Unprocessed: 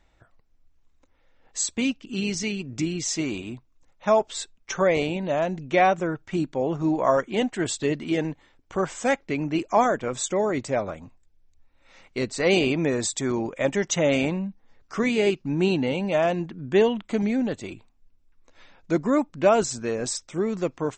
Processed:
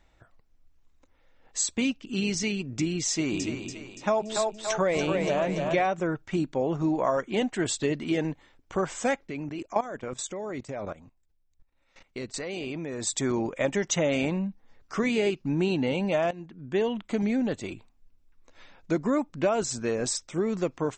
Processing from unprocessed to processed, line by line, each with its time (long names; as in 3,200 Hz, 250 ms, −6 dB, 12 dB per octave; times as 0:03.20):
0:03.11–0:05.86: echo with a time of its own for lows and highs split 380 Hz, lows 152 ms, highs 286 ms, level −6 dB
0:09.27–0:13.07: output level in coarse steps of 17 dB
0:16.31–0:17.67: fade in equal-power, from −16 dB
whole clip: downward compressor 4 to 1, threshold −22 dBFS